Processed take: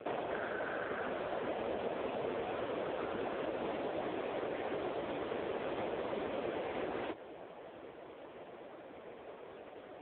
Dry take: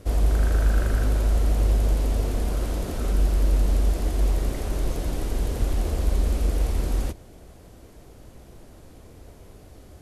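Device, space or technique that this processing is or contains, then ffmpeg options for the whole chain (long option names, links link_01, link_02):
voicemail: -af "highpass=440,lowpass=2900,acompressor=threshold=-40dB:ratio=6,volume=8.5dB" -ar 8000 -c:a libopencore_amrnb -b:a 5150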